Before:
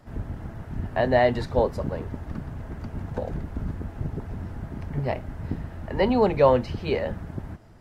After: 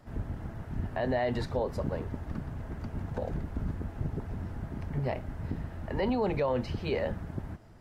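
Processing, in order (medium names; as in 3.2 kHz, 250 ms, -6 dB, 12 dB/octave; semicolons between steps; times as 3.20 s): peak limiter -18 dBFS, peak gain reduction 11.5 dB; trim -3 dB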